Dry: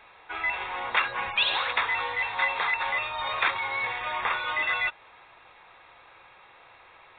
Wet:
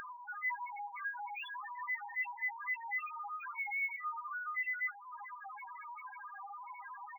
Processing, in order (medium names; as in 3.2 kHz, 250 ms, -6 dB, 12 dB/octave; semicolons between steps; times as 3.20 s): octave divider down 1 oct, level +1 dB; peaking EQ 78 Hz +12.5 dB 1.1 oct; in parallel at 0 dB: peak limiter -21 dBFS, peak gain reduction 10.5 dB; on the sum: three-band isolator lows -24 dB, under 550 Hz, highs -20 dB, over 2.8 kHz; reverse; compression 6:1, threshold -39 dBFS, peak gain reduction 19 dB; reverse; comb 5 ms, depth 53%; feedback delay 206 ms, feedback 37%, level -22.5 dB; loudest bins only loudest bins 1; upward compressor, threshold -49 dBFS; decimation joined by straight lines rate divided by 2×; trim +8.5 dB